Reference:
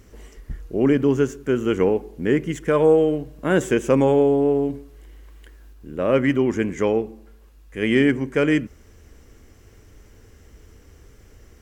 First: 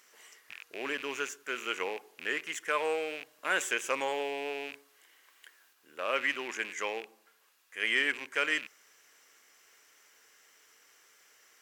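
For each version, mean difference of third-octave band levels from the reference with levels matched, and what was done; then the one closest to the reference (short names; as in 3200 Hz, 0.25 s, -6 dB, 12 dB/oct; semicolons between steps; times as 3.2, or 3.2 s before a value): 12.5 dB: rattling part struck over -33 dBFS, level -28 dBFS; HPF 1200 Hz 12 dB/oct; gain -1 dB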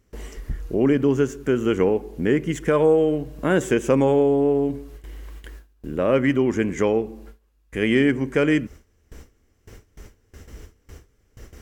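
2.0 dB: gate with hold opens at -37 dBFS; compressor 1.5:1, threshold -36 dBFS, peak gain reduction 9 dB; gain +7 dB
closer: second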